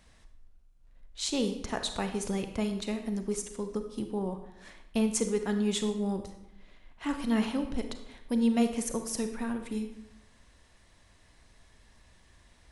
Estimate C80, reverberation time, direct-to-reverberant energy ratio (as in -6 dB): 11.0 dB, 0.85 s, 7.0 dB